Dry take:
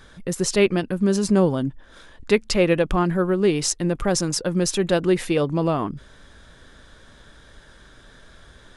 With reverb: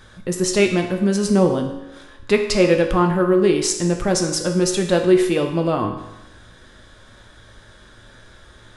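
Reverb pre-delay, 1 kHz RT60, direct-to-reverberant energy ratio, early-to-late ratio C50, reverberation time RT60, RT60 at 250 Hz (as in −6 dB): 4 ms, 0.95 s, 3.0 dB, 7.0 dB, 0.95 s, 0.95 s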